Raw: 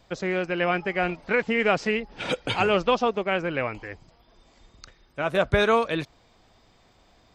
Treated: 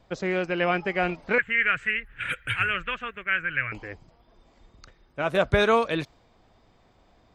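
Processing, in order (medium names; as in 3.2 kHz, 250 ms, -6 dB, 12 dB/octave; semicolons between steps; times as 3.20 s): 1.38–3.72 s: FFT filter 120 Hz 0 dB, 200 Hz -15 dB, 580 Hz -18 dB, 820 Hz -23 dB, 1.6 kHz +9 dB, 2.9 kHz -1 dB, 5.2 kHz -29 dB, 10 kHz +8 dB; tape noise reduction on one side only decoder only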